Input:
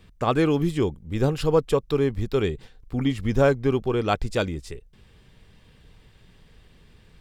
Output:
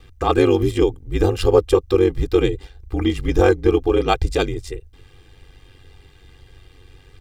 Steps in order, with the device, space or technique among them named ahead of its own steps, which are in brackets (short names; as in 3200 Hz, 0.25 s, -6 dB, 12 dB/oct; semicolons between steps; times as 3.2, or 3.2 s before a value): dynamic EQ 1500 Hz, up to -3 dB, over -34 dBFS, Q 0.84; ring-modulated robot voice (ring modulator 47 Hz; comb 2.5 ms, depth 88%); gain +6 dB